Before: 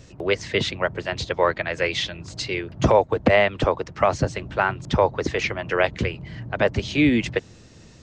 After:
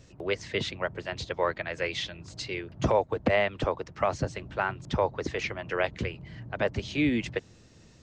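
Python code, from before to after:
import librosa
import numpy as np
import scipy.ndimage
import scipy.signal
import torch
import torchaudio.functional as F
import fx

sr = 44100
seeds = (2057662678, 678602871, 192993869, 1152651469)

y = x * 10.0 ** (-7.5 / 20.0)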